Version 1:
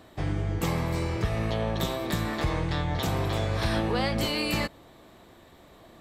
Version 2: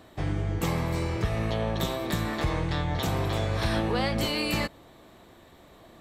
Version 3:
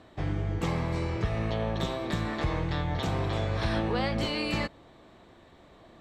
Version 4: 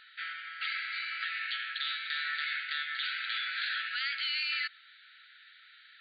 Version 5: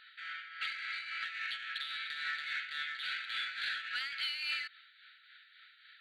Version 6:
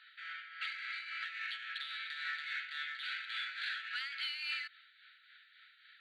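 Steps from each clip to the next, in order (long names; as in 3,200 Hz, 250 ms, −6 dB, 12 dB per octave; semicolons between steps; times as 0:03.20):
notch filter 4,900 Hz, Q 29
high-frequency loss of the air 74 metres; level −1.5 dB
brick-wall band-pass 1,300–4,800 Hz; in parallel at +1.5 dB: compressor whose output falls as the input rises −42 dBFS, ratio −1
in parallel at −5 dB: soft clipping −32.5 dBFS, distortion −12 dB; on the sum: shaped tremolo triangle 3.6 Hz, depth 60%; level −4 dB
elliptic high-pass filter 890 Hz, stop band 40 dB; high-shelf EQ 7,100 Hz −5.5 dB; level −1.5 dB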